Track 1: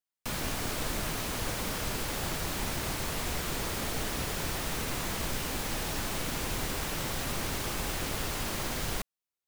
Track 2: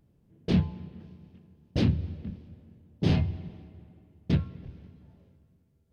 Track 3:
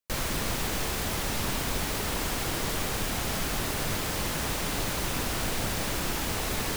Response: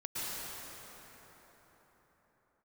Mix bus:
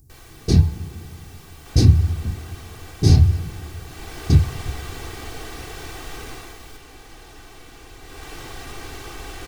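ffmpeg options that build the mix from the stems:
-filter_complex "[0:a]highshelf=frequency=8800:gain=-10,adelay=1400,volume=5.5dB,afade=type=in:start_time=3.85:duration=0.35:silence=0.398107,afade=type=out:start_time=6.28:duration=0.3:silence=0.375837,afade=type=in:start_time=8.02:duration=0.31:silence=0.398107[link_01];[1:a]bass=frequency=250:gain=13,treble=frequency=4000:gain=-6,aexciter=amount=12.6:drive=8.6:freq=4800,volume=0.5dB[link_02];[2:a]volume=-17.5dB[link_03];[link_01][link_02][link_03]amix=inputs=3:normalize=0,aecho=1:1:2.6:0.66"

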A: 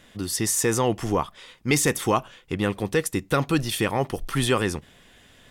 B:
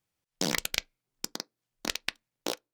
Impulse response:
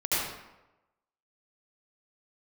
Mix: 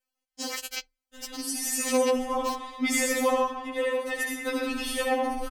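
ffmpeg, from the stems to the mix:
-filter_complex "[0:a]acompressor=mode=upward:threshold=-30dB:ratio=2.5,adelay=1150,volume=-7.5dB,asplit=2[link_01][link_02];[link_02]volume=-4.5dB[link_03];[1:a]bandreject=frequency=3600:width=12,asubboost=boost=12:cutoff=74,volume=0dB[link_04];[2:a]atrim=start_sample=2205[link_05];[link_03][link_05]afir=irnorm=-1:irlink=0[link_06];[link_01][link_04][link_06]amix=inputs=3:normalize=0,afftfilt=real='re*3.46*eq(mod(b,12),0)':imag='im*3.46*eq(mod(b,12),0)':win_size=2048:overlap=0.75"

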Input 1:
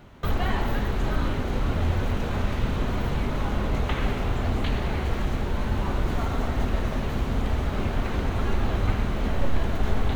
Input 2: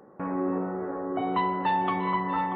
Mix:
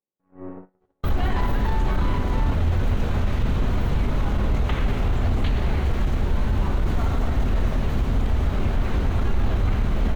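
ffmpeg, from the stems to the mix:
ffmpeg -i stem1.wav -i stem2.wav -filter_complex "[0:a]adelay=800,volume=0dB[link_01];[1:a]equalizer=frequency=1300:width=3.7:gain=-3.5,aeval=exprs='(tanh(14.1*val(0)+0.6)-tanh(0.6))/14.1':channel_layout=same,volume=-3dB[link_02];[link_01][link_02]amix=inputs=2:normalize=0,agate=range=-40dB:threshold=-32dB:ratio=16:detection=peak,lowshelf=frequency=140:gain=7.5,alimiter=limit=-13.5dB:level=0:latency=1:release=16" out.wav

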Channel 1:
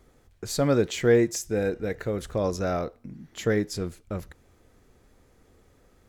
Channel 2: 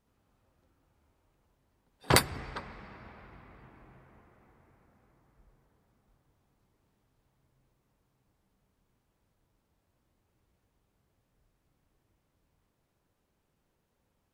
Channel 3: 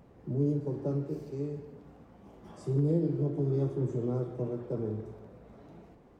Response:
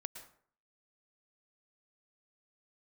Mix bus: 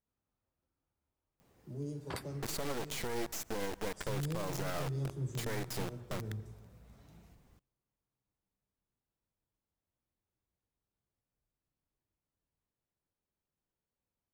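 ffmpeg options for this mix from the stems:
-filter_complex "[0:a]adynamicequalizer=threshold=0.00794:dfrequency=1300:dqfactor=0.82:tfrequency=1300:tqfactor=0.82:attack=5:release=100:ratio=0.375:range=1.5:mode=boostabove:tftype=bell,acompressor=threshold=-25dB:ratio=5,acrusher=bits=3:dc=4:mix=0:aa=0.000001,adelay=2000,volume=-2dB,asplit=2[link_01][link_02];[link_02]volume=-14dB[link_03];[1:a]volume=-17dB[link_04];[2:a]crystalizer=i=9.5:c=0,asubboost=boost=5.5:cutoff=150,adelay=1400,volume=-13dB[link_05];[3:a]atrim=start_sample=2205[link_06];[link_03][link_06]afir=irnorm=-1:irlink=0[link_07];[link_01][link_04][link_05][link_07]amix=inputs=4:normalize=0,alimiter=level_in=2.5dB:limit=-24dB:level=0:latency=1:release=86,volume=-2.5dB"

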